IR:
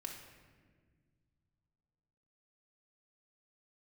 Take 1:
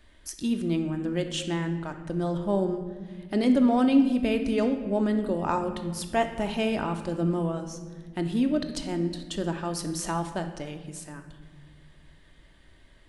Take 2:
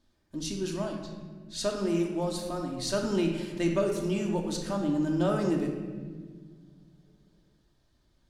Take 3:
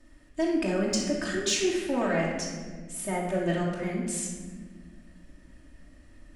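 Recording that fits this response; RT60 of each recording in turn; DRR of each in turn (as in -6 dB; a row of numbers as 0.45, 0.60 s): 2; not exponential, 1.6 s, 1.6 s; 5.5, 0.0, -5.0 dB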